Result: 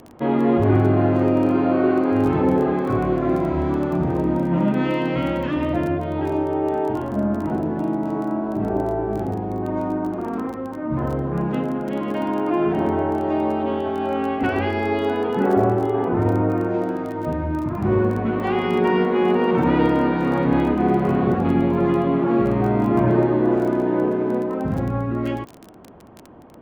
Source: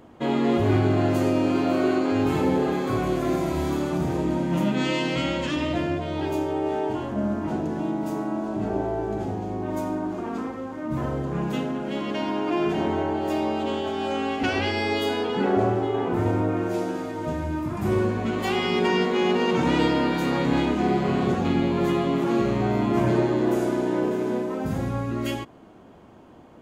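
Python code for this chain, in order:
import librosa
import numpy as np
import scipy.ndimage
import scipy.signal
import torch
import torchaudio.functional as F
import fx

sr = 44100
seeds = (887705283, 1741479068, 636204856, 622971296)

y = scipy.signal.sosfilt(scipy.signal.butter(2, 1700.0, 'lowpass', fs=sr, output='sos'), x)
y = fx.dmg_crackle(y, sr, seeds[0], per_s=18.0, level_db=-32.0)
y = y * librosa.db_to_amplitude(4.0)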